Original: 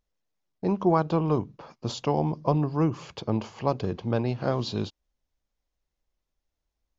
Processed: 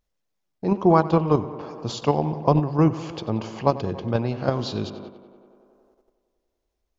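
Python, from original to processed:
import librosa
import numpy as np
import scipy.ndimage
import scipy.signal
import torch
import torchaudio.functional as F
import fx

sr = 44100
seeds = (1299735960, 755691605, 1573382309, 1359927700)

p1 = fx.echo_tape(x, sr, ms=93, feedback_pct=81, wet_db=-12.5, lp_hz=3300.0, drive_db=6.0, wow_cents=25)
p2 = fx.level_steps(p1, sr, step_db=23)
y = p1 + (p2 * librosa.db_to_amplitude(2.0))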